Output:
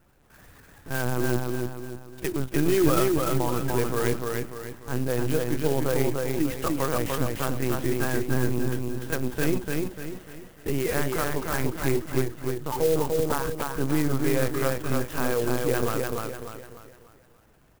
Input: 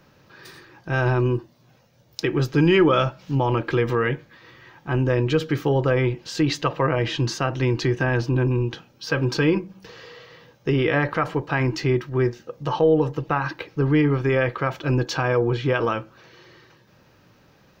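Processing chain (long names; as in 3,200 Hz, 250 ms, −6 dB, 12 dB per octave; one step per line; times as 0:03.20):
linear-prediction vocoder at 8 kHz pitch kept
on a send: repeating echo 296 ms, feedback 41%, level −3 dB
on the sum: converter with an unsteady clock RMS 0.063 ms
level −5.5 dB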